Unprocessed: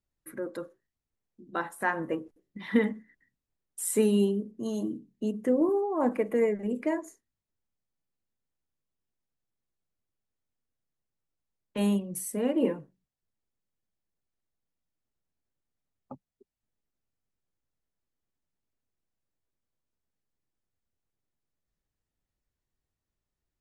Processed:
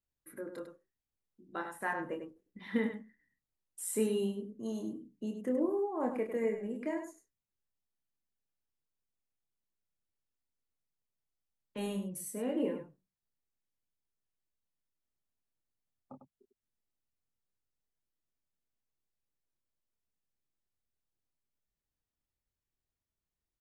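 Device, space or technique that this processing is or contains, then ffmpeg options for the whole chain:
slapback doubling: -filter_complex "[0:a]asplit=3[a][b][c];[b]adelay=27,volume=-5.5dB[d];[c]adelay=100,volume=-8dB[e];[a][d][e]amix=inputs=3:normalize=0,volume=-8dB"

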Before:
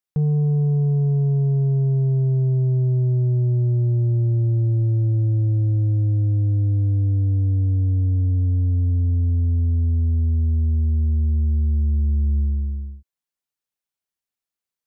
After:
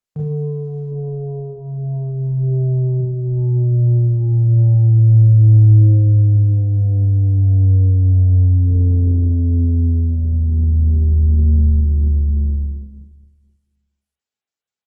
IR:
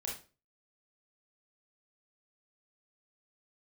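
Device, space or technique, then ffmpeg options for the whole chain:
far-field microphone of a smart speaker: -filter_complex "[0:a]asettb=1/sr,asplit=3[a][b][c];[a]atrim=end=3.004[d];[b]atrim=start=3:end=3.68,asetpts=PTS-STARTPTS,afade=t=in:d=0.004:c=qsin,afade=t=out:st=0.676:d=0.004:c=qsin,adynamicequalizer=threshold=0.0126:dfrequency=170:dqfactor=3.4:tfrequency=170:tqfactor=3.4:attack=5:release=100:ratio=0.375:range=1.5:mode=cutabove:tftype=bell[e];[c]atrim=start=3.676[f];[d][e]acrossfade=d=0.004:c1=hsin:c2=qsin[g];[g][f]acrossfade=d=0.004:c1=qsin:c2=hsin,aecho=1:1:249|498|747|996:0.0841|0.0438|0.0228|0.0118[h];[1:a]atrim=start_sample=2205[i];[h][i]afir=irnorm=-1:irlink=0,highpass=86,dynaudnorm=f=660:g=11:m=6.5dB" -ar 48000 -c:a libopus -b:a 16k

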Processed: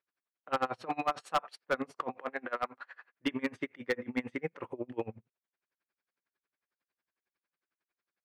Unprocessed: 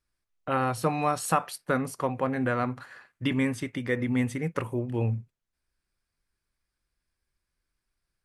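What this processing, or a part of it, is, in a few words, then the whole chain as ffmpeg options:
helicopter radio: -filter_complex "[0:a]asettb=1/sr,asplit=3[a][b][c];[a]atrim=end=2.144[d];[b]atrim=start=2.14:end=3.08,asetpts=PTS-STARTPTS,afade=t=in:d=0.004:c=qsin,afade=t=out:st=0.936:d=0.004:c=qsin,highpass=f=600:p=1[e];[c]atrim=start=3.076[f];[d][e]acrossfade=d=0.004:c1=hsin:c2=qsin[g];[g][f]acrossfade=d=0.004:c1=qsin:c2=hsin,highpass=340,lowpass=2.8k,aeval=exprs='val(0)*pow(10,-28*(0.5-0.5*cos(2*PI*11*n/s))/20)':c=same,asoftclip=type=hard:threshold=-26dB,volume=3.5dB"

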